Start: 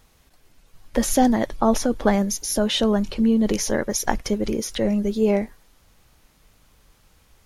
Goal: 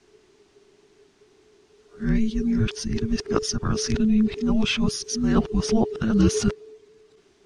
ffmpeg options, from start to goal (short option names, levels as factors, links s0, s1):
-af "areverse,lowpass=f=7900:w=0.5412,lowpass=f=7900:w=1.3066,afreqshift=-440,volume=0.891"